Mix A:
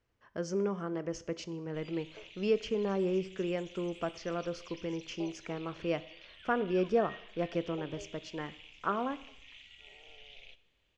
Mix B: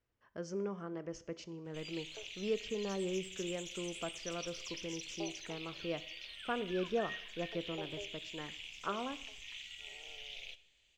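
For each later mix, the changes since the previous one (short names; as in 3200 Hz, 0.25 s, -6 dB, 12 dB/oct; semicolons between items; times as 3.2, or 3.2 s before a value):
speech -6.5 dB; background: remove tape spacing loss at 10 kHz 21 dB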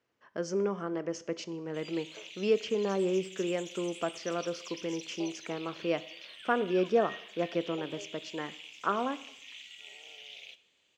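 speech +9.0 dB; master: add HPF 200 Hz 12 dB/oct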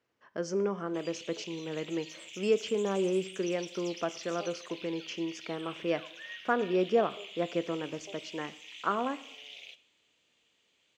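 background: entry -0.80 s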